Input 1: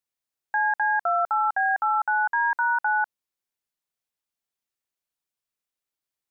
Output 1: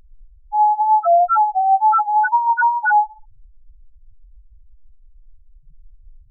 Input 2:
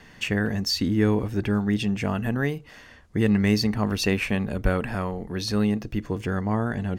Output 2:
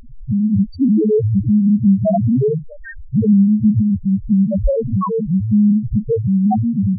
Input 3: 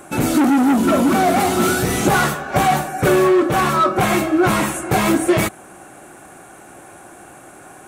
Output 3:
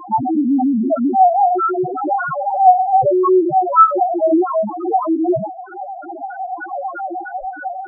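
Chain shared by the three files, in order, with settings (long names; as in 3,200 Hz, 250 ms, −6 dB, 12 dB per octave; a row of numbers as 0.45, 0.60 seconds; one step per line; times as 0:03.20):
dynamic equaliser 750 Hz, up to +5 dB, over −31 dBFS, Q 1.4
automatic gain control gain up to 6 dB
brickwall limiter −9.5 dBFS
downward compressor 4 to 1, threshold −28 dBFS
background noise brown −51 dBFS
auto-filter low-pass sine 3.2 Hz 620–1,500 Hz
feedback echo with a band-pass in the loop 68 ms, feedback 54%, band-pass 870 Hz, level −21.5 dB
tape wow and flutter 22 cents
spectral peaks only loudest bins 1
loudness normalisation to −16 LKFS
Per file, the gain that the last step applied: +15.0, +22.5, +18.5 decibels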